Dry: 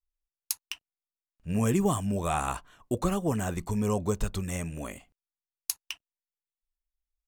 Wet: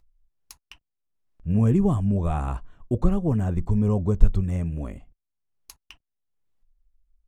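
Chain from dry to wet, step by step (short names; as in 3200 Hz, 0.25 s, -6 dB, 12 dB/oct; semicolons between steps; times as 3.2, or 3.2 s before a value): tilt -4 dB/oct; upward compressor, threshold -49 dBFS; gain -3.5 dB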